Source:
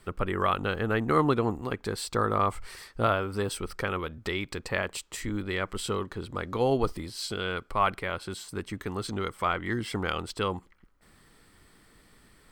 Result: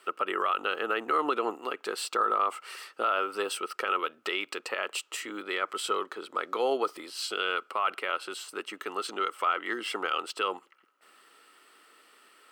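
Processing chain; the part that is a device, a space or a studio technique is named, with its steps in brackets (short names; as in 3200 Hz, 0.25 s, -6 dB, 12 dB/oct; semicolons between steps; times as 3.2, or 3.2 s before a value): laptop speaker (HPF 350 Hz 24 dB/oct; bell 1300 Hz +11 dB 0.22 oct; bell 2800 Hz +11.5 dB 0.25 oct; limiter -17 dBFS, peak gain reduction 9.5 dB); 5.39–7.07 notch 2800 Hz, Q 9.9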